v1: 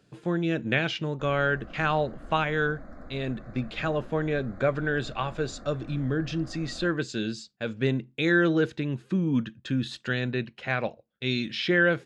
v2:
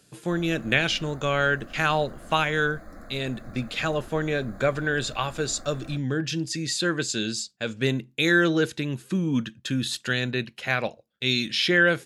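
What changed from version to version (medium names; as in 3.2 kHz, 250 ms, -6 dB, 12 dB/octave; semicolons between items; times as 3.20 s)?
background: entry -0.90 s; master: remove tape spacing loss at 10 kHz 21 dB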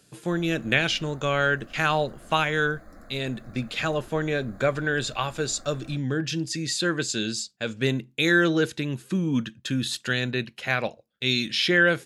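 background -4.0 dB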